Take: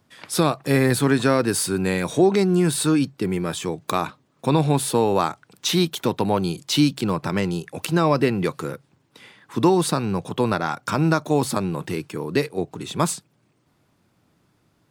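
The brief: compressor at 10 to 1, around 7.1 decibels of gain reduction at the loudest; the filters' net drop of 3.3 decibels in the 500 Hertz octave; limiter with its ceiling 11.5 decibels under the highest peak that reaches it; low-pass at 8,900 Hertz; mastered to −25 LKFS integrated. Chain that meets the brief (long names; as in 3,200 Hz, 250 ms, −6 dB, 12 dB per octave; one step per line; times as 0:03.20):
low-pass filter 8,900 Hz
parametric band 500 Hz −4.5 dB
downward compressor 10 to 1, threshold −21 dBFS
level +3.5 dB
brickwall limiter −13 dBFS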